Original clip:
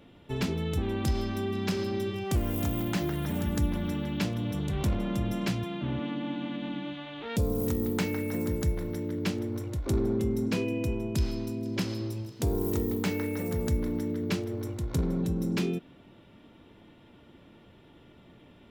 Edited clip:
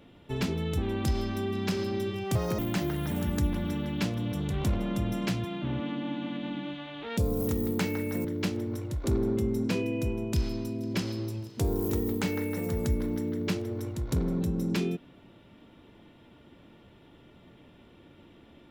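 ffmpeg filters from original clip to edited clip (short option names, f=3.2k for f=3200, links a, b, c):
-filter_complex "[0:a]asplit=4[a][b][c][d];[a]atrim=end=2.354[e];[b]atrim=start=2.35:end=2.78,asetpts=PTS-STARTPTS,asetrate=79821,aresample=44100[f];[c]atrim=start=2.776:end=8.442[g];[d]atrim=start=9.068[h];[e][f]acrossfade=d=0.004:c1=hsin:c2=hsin[i];[i][g]acrossfade=d=0.004:c1=hsin:c2=hsin[j];[j][h]acrossfade=d=0.004:c1=hsin:c2=hsin"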